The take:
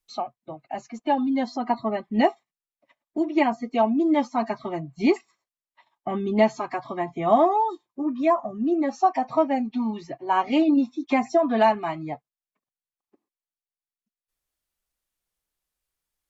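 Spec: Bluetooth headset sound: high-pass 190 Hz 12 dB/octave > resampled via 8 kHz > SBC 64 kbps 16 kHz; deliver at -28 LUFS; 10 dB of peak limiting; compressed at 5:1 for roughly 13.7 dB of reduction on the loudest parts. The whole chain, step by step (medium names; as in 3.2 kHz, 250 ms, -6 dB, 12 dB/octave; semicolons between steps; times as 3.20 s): compression 5:1, threshold -30 dBFS; peak limiter -28.5 dBFS; high-pass 190 Hz 12 dB/octave; resampled via 8 kHz; trim +10.5 dB; SBC 64 kbps 16 kHz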